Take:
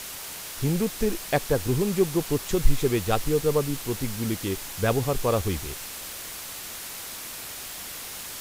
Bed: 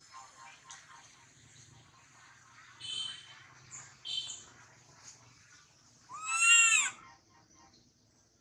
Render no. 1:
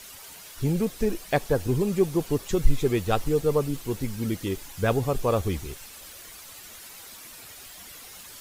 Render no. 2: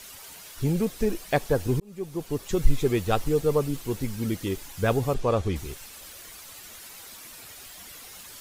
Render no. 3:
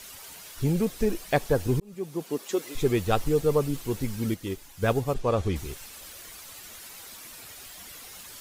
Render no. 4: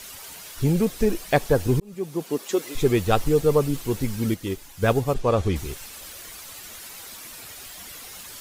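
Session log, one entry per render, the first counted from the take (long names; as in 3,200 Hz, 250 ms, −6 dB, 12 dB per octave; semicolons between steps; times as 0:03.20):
broadband denoise 10 dB, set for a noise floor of −38 dBFS
0:01.80–0:02.63: fade in linear; 0:05.14–0:05.56: high-frequency loss of the air 59 metres
0:01.94–0:02.75: high-pass filter 100 Hz → 370 Hz 24 dB per octave; 0:04.34–0:05.38: expander for the loud parts, over −34 dBFS
level +4 dB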